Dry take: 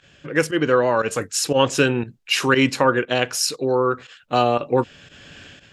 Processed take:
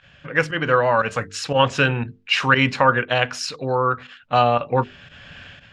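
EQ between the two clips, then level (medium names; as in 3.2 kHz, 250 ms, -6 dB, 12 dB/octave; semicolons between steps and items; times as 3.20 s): Bessel low-pass 2.6 kHz, order 2; peaking EQ 350 Hz -13.5 dB 1 oct; hum notches 50/100/150/200/250/300/350/400/450 Hz; +5.0 dB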